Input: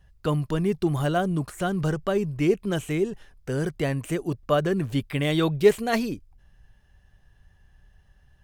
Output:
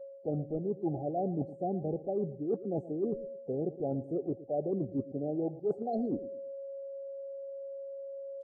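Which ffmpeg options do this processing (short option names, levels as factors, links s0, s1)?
-filter_complex "[0:a]acrossover=split=220 2200:gain=0.2 1 0.141[s0][s1][s2];[s0][s1][s2]amix=inputs=3:normalize=0,aeval=exprs='val(0)+0.00501*sin(2*PI*550*n/s)':c=same,afftfilt=real='re*(1-between(b*sr/4096,830,4100))':imag='im*(1-between(b*sr/4096,830,4100))':win_size=4096:overlap=0.75,afftdn=nr=27:nf=-38,areverse,acompressor=threshold=0.0126:ratio=8,areverse,asplit=2[s3][s4];[s4]adelay=113,lowpass=f=3400:p=1,volume=0.158,asplit=2[s5][s6];[s6]adelay=113,lowpass=f=3400:p=1,volume=0.3,asplit=2[s7][s8];[s8]adelay=113,lowpass=f=3400:p=1,volume=0.3[s9];[s3][s5][s7][s9]amix=inputs=4:normalize=0,volume=2.37" -ar 22050 -c:a libvorbis -b:a 16k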